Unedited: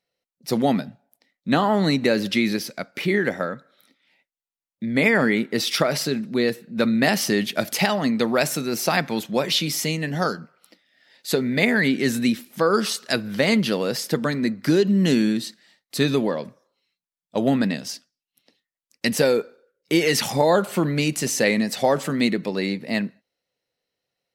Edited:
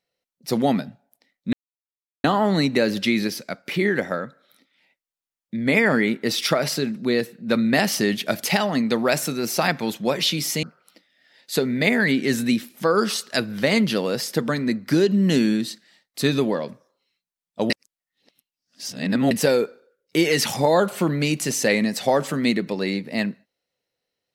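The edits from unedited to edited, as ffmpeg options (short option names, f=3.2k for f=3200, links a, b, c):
-filter_complex "[0:a]asplit=5[a][b][c][d][e];[a]atrim=end=1.53,asetpts=PTS-STARTPTS,afade=t=out:st=1.526:d=0.004:c=hsin,apad=pad_dur=0.71[f];[b]atrim=start=1.53:end=9.922,asetpts=PTS-STARTPTS,afade=t=in:d=0.004:c=hsin[g];[c]atrim=start=10.388:end=17.462[h];[d]atrim=start=17.458:end=19.072,asetpts=PTS-STARTPTS,areverse[i];[e]atrim=start=19.068[j];[f][g]concat=n=2:v=0:a=1[k];[k][h]acrossfade=d=0.004:c1=hsin:c2=hsin[l];[l][i]acrossfade=d=0.004:c1=hsin:c2=hsin[m];[m][j]acrossfade=d=0.004:c1=hsin:c2=hsin"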